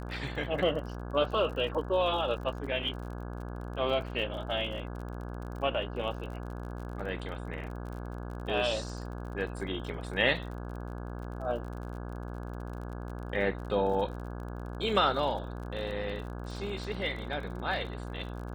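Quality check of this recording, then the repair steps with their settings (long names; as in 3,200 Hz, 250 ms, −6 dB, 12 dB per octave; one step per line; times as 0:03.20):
mains buzz 60 Hz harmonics 28 −39 dBFS
surface crackle 40 per second −40 dBFS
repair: click removal
hum removal 60 Hz, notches 28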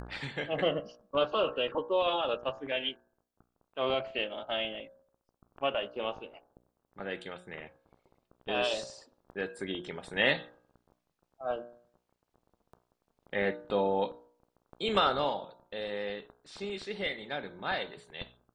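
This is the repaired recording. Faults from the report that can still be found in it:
none of them is left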